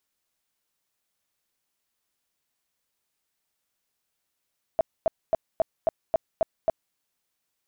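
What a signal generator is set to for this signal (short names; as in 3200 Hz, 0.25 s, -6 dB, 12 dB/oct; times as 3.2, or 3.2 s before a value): tone bursts 653 Hz, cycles 12, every 0.27 s, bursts 8, -17 dBFS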